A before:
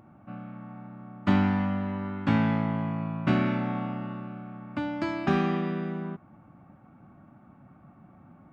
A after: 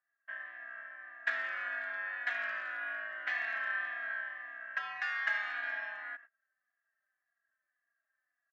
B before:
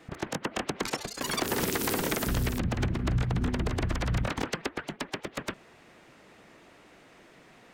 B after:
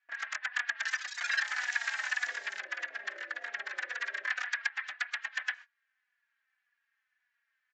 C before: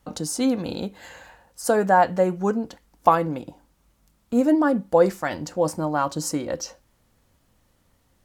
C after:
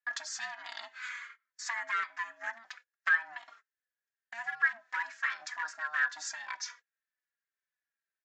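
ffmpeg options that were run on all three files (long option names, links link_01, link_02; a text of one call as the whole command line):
ffmpeg -i in.wav -filter_complex "[0:a]agate=range=-28dB:threshold=-46dB:ratio=16:detection=peak,acompressor=threshold=-30dB:ratio=3,aeval=exprs='val(0)*sin(2*PI*460*n/s)':channel_layout=same,aresample=16000,volume=26dB,asoftclip=hard,volume=-26dB,aresample=44100,highpass=frequency=1700:width_type=q:width=8.9,asplit=2[link_01][link_02];[link_02]adelay=3.6,afreqshift=-1.8[link_03];[link_01][link_03]amix=inputs=2:normalize=1,volume=2.5dB" out.wav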